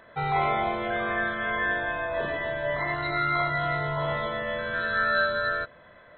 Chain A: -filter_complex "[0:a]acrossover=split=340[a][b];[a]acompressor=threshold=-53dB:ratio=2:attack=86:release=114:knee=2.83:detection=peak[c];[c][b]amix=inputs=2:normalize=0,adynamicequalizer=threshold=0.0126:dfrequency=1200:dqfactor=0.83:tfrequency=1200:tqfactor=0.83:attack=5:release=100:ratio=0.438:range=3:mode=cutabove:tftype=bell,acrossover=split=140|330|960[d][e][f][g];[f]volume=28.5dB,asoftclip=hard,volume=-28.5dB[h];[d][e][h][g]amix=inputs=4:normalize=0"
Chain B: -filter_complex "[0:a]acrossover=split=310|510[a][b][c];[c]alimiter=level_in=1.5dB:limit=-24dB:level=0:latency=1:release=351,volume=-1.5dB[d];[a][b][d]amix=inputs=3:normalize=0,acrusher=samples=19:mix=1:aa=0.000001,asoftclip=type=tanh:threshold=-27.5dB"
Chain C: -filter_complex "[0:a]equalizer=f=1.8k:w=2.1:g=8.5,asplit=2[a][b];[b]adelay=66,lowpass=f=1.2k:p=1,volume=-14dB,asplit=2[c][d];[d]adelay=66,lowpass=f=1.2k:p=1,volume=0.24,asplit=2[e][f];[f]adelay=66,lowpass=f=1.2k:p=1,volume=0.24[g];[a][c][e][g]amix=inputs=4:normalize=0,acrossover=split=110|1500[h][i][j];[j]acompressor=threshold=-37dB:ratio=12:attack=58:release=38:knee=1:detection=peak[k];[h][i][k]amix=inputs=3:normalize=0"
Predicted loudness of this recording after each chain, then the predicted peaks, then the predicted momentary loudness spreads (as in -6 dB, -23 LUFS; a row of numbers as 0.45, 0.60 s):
-30.5, -33.5, -24.5 LUFS; -17.5, -27.5, -12.0 dBFS; 5, 1, 4 LU